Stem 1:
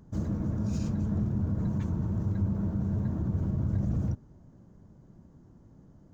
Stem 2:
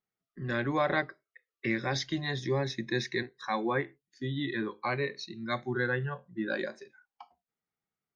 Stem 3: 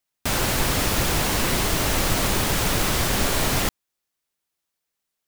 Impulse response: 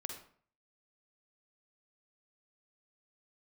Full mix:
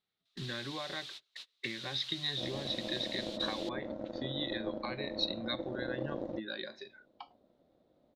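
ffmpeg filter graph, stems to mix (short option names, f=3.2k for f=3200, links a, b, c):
-filter_complex "[0:a]aeval=exprs='0.119*(cos(1*acos(clip(val(0)/0.119,-1,1)))-cos(1*PI/2))+0.0237*(cos(3*acos(clip(val(0)/0.119,-1,1)))-cos(3*PI/2))':c=same,aeval=exprs='val(0)*sin(2*PI*420*n/s)':c=same,adelay=2250,volume=-4.5dB[a];[1:a]acompressor=threshold=-39dB:ratio=20,volume=0.5dB,asplit=2[b][c];[2:a]aderivative,volume=-20dB[d];[c]apad=whole_len=232423[e];[d][e]sidechaingate=range=-33dB:threshold=-59dB:ratio=16:detection=peak[f];[a][b][f]amix=inputs=3:normalize=0,lowpass=f=3.8k:t=q:w=5.9"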